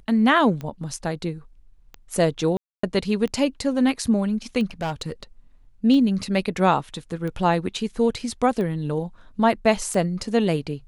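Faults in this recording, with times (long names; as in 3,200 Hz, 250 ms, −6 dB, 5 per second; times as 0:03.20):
scratch tick 45 rpm −20 dBFS
0:02.57–0:02.83: drop-out 264 ms
0:04.71–0:05.23: clipping −22 dBFS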